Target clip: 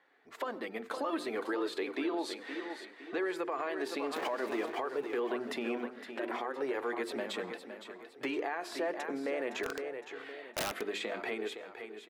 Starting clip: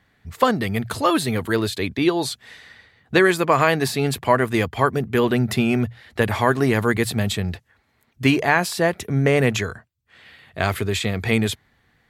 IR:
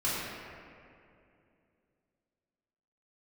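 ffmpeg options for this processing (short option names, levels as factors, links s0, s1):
-filter_complex "[0:a]asettb=1/sr,asplit=3[s0][s1][s2];[s0]atrim=end=4.164[s3];[s1]atrim=start=4.16:end=4.7,asetpts=PTS-STARTPTS,afade=t=in:d=0.004:c=qsin,afade=t=out:st=0.536:d=0.004:c=qsin,aeval=exprs='val(0)+0.5*0.112*sgn(val(0))':c=same[s4];[s2]atrim=start=4.696[s5];[s3][s4]acrossfade=d=0.004:c1=hsin:c2=qsin[s6];[s6][s5]acrossfade=d=0.004:c1=qsin:c2=hsin,asettb=1/sr,asplit=3[s7][s8][s9];[s7]atrim=end=5.874[s10];[s8]atrim=start=5.87:end=6.62,asetpts=PTS-STARTPTS,afade=t=in:d=0.004:c=qsin,afade=t=out:st=0.746:d=0.004:c=qsin,aeval=exprs='val(0)*sin(2*PI*130*n/s)':c=same[s11];[s9]atrim=start=6.616[s12];[s10][s11]acrossfade=d=0.004:c1=hsin:c2=qsin[s13];[s13][s12]acrossfade=d=0.004:c1=qsin:c2=hsin,acompressor=threshold=0.0355:ratio=4,lowpass=f=1400:p=1,dynaudnorm=f=170:g=11:m=1.5,aecho=1:1:513|1026|1539|2052:0.299|0.119|0.0478|0.0191,asplit=2[s14][s15];[1:a]atrim=start_sample=2205,atrim=end_sample=3969,adelay=92[s16];[s15][s16]afir=irnorm=-1:irlink=0,volume=0.0501[s17];[s14][s17]amix=inputs=2:normalize=0,flanger=delay=2.1:depth=1.9:regen=-48:speed=0.6:shape=triangular,highpass=f=320:w=0.5412,highpass=f=320:w=1.3066,bandreject=f=50:t=h:w=6,bandreject=f=100:t=h:w=6,bandreject=f=150:t=h:w=6,bandreject=f=200:t=h:w=6,bandreject=f=250:t=h:w=6,bandreject=f=300:t=h:w=6,bandreject=f=350:t=h:w=6,bandreject=f=400:t=h:w=6,bandreject=f=450:t=h:w=6,asplit=3[s18][s19][s20];[s18]afade=t=out:st=9.63:d=0.02[s21];[s19]aeval=exprs='(mod(33.5*val(0)+1,2)-1)/33.5':c=same,afade=t=in:st=9.63:d=0.02,afade=t=out:st=10.8:d=0.02[s22];[s20]afade=t=in:st=10.8:d=0.02[s23];[s21][s22][s23]amix=inputs=3:normalize=0,alimiter=level_in=1.68:limit=0.0631:level=0:latency=1:release=68,volume=0.596,volume=1.41"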